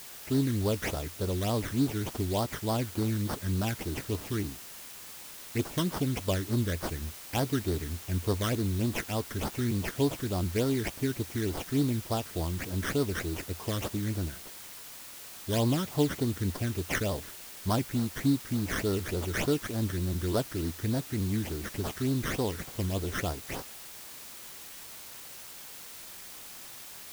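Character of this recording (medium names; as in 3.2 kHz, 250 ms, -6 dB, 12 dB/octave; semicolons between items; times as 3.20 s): aliases and images of a low sample rate 4.1 kHz, jitter 20%; phasing stages 12, 3.4 Hz, lowest notch 770–2500 Hz; a quantiser's noise floor 8-bit, dither triangular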